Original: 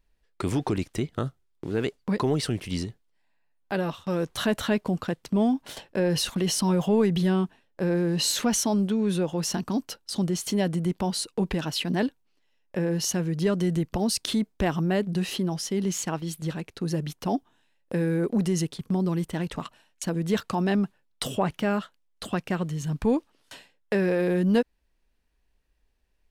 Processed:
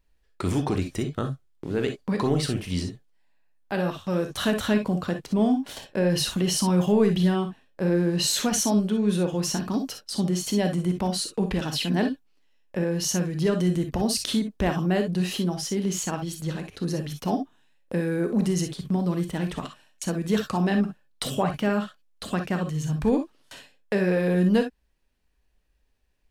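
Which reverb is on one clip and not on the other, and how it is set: non-linear reverb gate 80 ms rising, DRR 5.5 dB

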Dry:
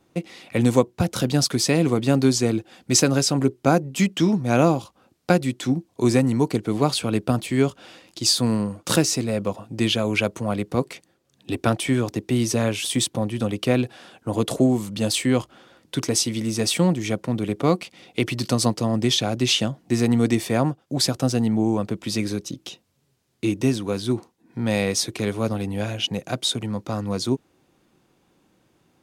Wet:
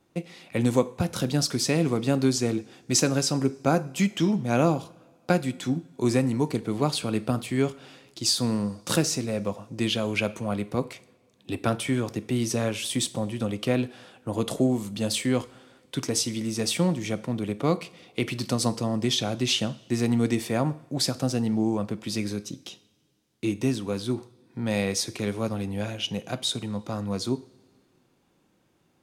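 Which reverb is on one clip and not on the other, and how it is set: two-slope reverb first 0.46 s, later 2 s, from -18 dB, DRR 12.5 dB; gain -4.5 dB

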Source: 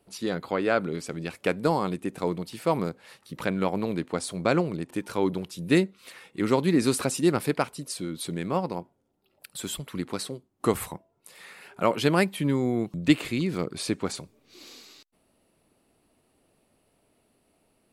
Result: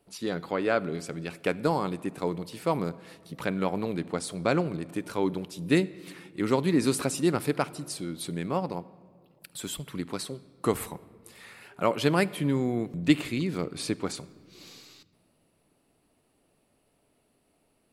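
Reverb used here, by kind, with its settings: shoebox room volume 3000 m³, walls mixed, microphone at 0.31 m; gain -2 dB

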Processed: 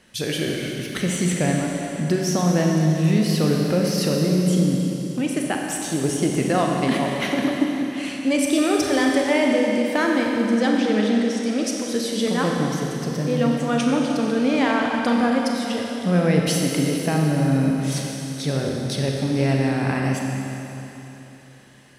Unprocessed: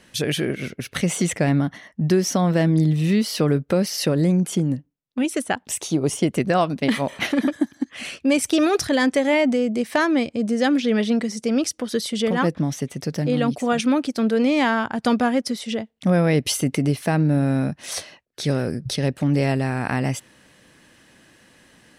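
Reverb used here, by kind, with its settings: Schroeder reverb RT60 3.4 s, combs from 30 ms, DRR -0.5 dB; gain -3 dB

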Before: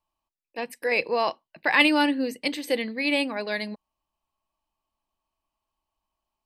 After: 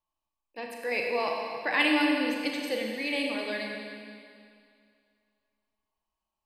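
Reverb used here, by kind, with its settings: Schroeder reverb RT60 2.3 s, combs from 29 ms, DRR 0 dB; gain -7 dB

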